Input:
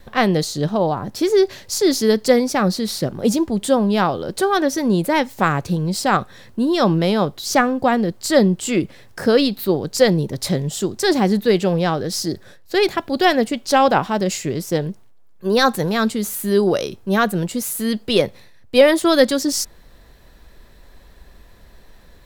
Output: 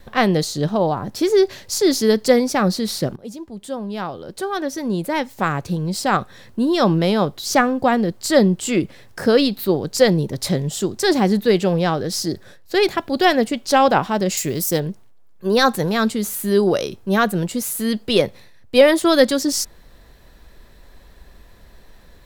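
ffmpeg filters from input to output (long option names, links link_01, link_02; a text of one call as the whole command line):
ffmpeg -i in.wav -filter_complex "[0:a]asettb=1/sr,asplit=3[link_01][link_02][link_03];[link_01]atrim=end=14.374[link_04];[link_02]atrim=start=14.37:end=14.8,asetpts=PTS-STARTPTS,afade=type=in:duration=0.004:curve=qsin,afade=type=out:start_time=0.426:duration=0.004:curve=qsin,aemphasis=mode=production:type=50fm[link_05];[link_03]atrim=start=14.796[link_06];[link_04][link_05]acrossfade=duration=0.004:curve1=hsin:curve2=qsin[link_07];[link_07][link_06]acrossfade=duration=0.004:curve1=qsin:curve2=hsin,asplit=2[link_08][link_09];[link_08]atrim=end=3.16,asetpts=PTS-STARTPTS,afade=type=out:start_time=3.156:duration=0.004:curve=hsin:silence=0.11885[link_10];[link_09]atrim=start=3.16,asetpts=PTS-STARTPTS,afade=type=in:duration=3.48:silence=0.11885[link_11];[link_10][link_11]concat=n=2:v=0:a=1" out.wav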